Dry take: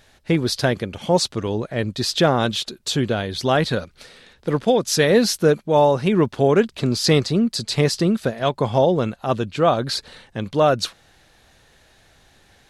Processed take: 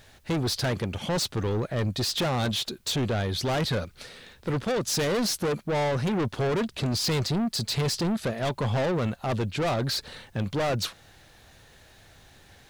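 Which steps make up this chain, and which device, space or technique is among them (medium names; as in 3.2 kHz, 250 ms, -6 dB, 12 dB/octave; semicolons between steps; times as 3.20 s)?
open-reel tape (saturation -24 dBFS, distortion -5 dB; peaking EQ 100 Hz +4.5 dB 0.96 oct; white noise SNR 42 dB)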